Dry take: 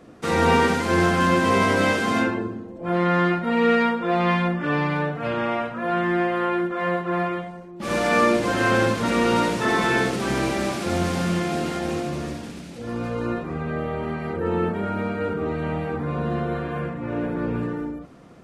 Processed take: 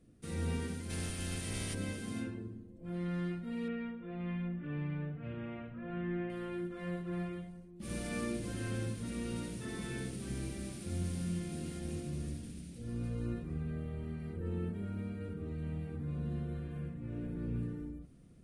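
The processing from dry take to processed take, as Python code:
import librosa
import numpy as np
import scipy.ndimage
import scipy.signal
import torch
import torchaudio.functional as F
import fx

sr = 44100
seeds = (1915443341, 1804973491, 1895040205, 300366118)

y = fx.spec_clip(x, sr, under_db=19, at=(0.89, 1.73), fade=0.02)
y = fx.lowpass(y, sr, hz=2900.0, slope=24, at=(3.68, 6.3))
y = fx.tone_stack(y, sr, knobs='10-0-1')
y = fx.rider(y, sr, range_db=10, speed_s=2.0)
y = fx.peak_eq(y, sr, hz=9300.0, db=14.5, octaves=0.27)
y = y * 10.0 ** (2.5 / 20.0)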